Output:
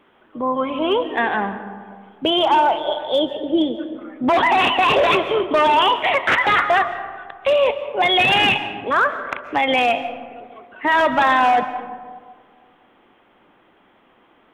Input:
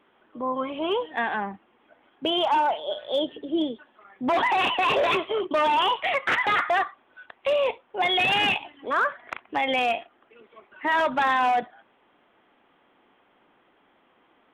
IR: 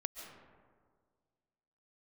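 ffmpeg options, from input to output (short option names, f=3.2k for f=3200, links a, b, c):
-filter_complex "[0:a]asplit=2[a][b];[1:a]atrim=start_sample=2205,lowshelf=f=190:g=9.5[c];[b][c]afir=irnorm=-1:irlink=0,volume=-0.5dB[d];[a][d]amix=inputs=2:normalize=0,volume=1.5dB"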